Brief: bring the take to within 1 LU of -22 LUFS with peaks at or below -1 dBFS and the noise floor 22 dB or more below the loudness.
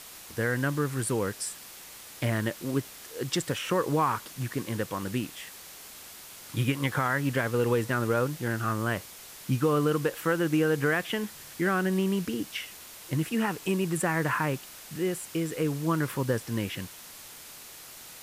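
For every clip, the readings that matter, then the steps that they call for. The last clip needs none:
noise floor -47 dBFS; noise floor target -51 dBFS; loudness -29.0 LUFS; peak -14.5 dBFS; loudness target -22.0 LUFS
-> denoiser 6 dB, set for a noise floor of -47 dBFS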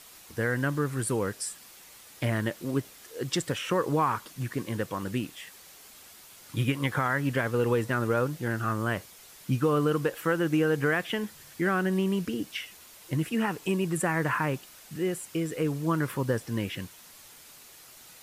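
noise floor -51 dBFS; loudness -29.0 LUFS; peak -15.0 dBFS; loudness target -22.0 LUFS
-> gain +7 dB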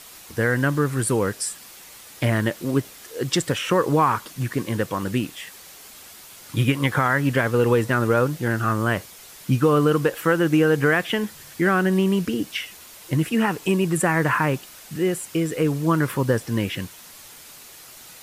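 loudness -22.0 LUFS; peak -8.0 dBFS; noise floor -44 dBFS

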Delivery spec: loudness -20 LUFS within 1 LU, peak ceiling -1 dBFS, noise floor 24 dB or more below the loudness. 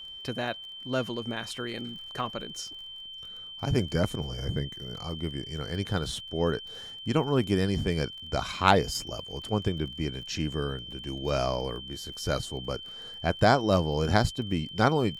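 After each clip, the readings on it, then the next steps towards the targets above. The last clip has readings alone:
ticks 29/s; steady tone 3100 Hz; tone level -40 dBFS; loudness -30.0 LUFS; peak -5.5 dBFS; loudness target -20.0 LUFS
-> de-click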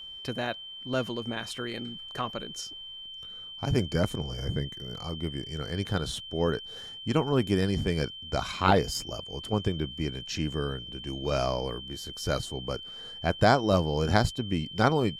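ticks 0/s; steady tone 3100 Hz; tone level -40 dBFS
-> notch 3100 Hz, Q 30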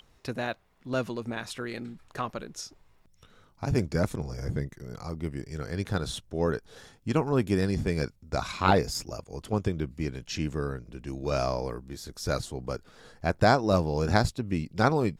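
steady tone none; loudness -30.0 LUFS; peak -6.0 dBFS; loudness target -20.0 LUFS
-> gain +10 dB; limiter -1 dBFS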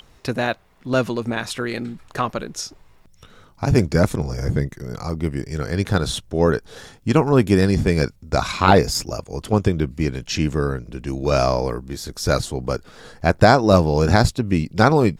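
loudness -20.5 LUFS; peak -1.0 dBFS; noise floor -52 dBFS

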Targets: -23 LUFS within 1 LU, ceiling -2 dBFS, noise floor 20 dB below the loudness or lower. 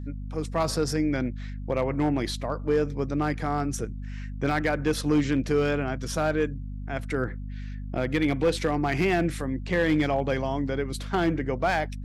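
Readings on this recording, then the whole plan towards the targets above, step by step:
clipped 0.6%; flat tops at -16.0 dBFS; hum 50 Hz; harmonics up to 250 Hz; hum level -33 dBFS; loudness -27.0 LUFS; peak -16.0 dBFS; loudness target -23.0 LUFS
-> clip repair -16 dBFS; de-hum 50 Hz, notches 5; gain +4 dB

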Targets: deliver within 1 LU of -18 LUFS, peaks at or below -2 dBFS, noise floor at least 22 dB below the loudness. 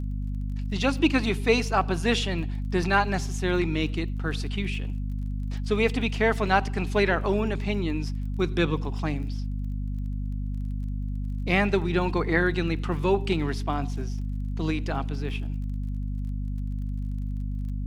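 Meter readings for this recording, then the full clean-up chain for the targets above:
ticks 27/s; hum 50 Hz; harmonics up to 250 Hz; hum level -27 dBFS; loudness -27.5 LUFS; peak -7.5 dBFS; loudness target -18.0 LUFS
-> de-click; de-hum 50 Hz, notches 5; gain +9.5 dB; limiter -2 dBFS

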